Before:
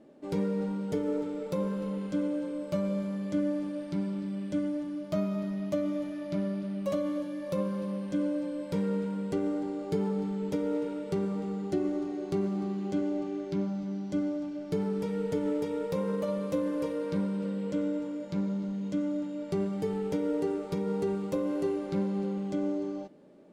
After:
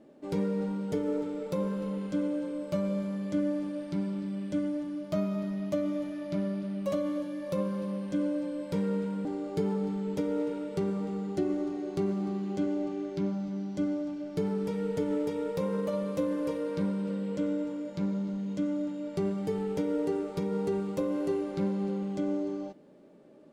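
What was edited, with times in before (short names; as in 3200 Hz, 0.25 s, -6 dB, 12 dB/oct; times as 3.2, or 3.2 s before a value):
9.25–9.6 cut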